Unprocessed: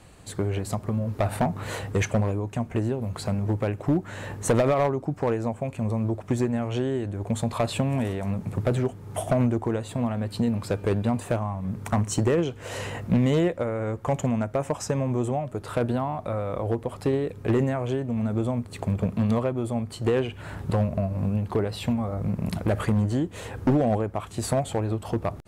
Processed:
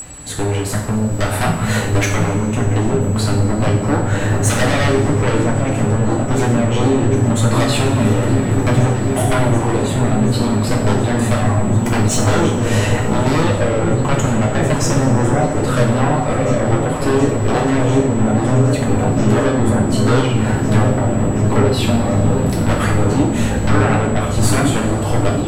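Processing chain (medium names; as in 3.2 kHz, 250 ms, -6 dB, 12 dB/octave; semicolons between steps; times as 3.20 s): sine folder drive 7 dB, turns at -15 dBFS; whistle 7.8 kHz -22 dBFS; on a send: delay with an opening low-pass 728 ms, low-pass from 200 Hz, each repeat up 1 oct, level 0 dB; on the sum: two-slope reverb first 0.57 s, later 3.9 s, from -18 dB, DRR -2.5 dB; trim -1.5 dB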